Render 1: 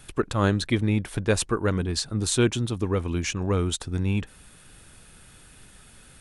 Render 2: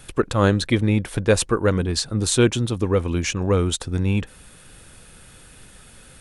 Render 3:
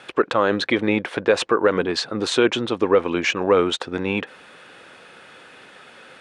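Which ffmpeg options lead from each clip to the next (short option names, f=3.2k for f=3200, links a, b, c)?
-af "equalizer=f=510:w=6.1:g=5.5,volume=4dB"
-af "highpass=400,lowpass=2.9k,alimiter=limit=-14.5dB:level=0:latency=1:release=49,volume=8.5dB"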